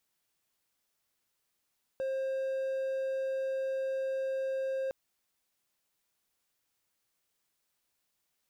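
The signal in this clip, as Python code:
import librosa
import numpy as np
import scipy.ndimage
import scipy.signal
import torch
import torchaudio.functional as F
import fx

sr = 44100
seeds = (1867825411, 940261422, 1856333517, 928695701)

y = 10.0 ** (-28.5 / 20.0) * (1.0 - 4.0 * np.abs(np.mod(532.0 * (np.arange(round(2.91 * sr)) / sr) + 0.25, 1.0) - 0.5))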